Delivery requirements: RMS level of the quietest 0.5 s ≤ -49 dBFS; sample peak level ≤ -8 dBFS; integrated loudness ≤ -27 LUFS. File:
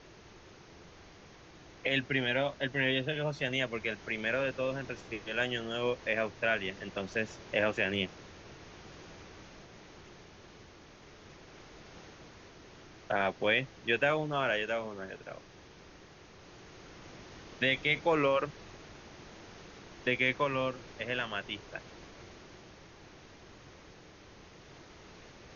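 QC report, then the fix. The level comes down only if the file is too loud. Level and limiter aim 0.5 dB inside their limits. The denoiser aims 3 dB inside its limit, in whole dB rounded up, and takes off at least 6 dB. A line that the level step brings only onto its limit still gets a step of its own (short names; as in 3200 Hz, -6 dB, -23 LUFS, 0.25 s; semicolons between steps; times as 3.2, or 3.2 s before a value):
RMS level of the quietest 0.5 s -54 dBFS: OK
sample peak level -15.0 dBFS: OK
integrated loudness -32.0 LUFS: OK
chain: none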